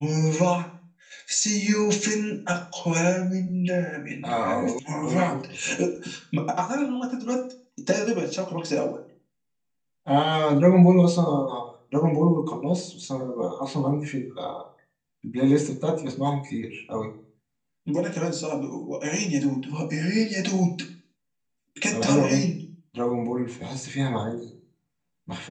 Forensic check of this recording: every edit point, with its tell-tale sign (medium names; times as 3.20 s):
4.79 s: sound stops dead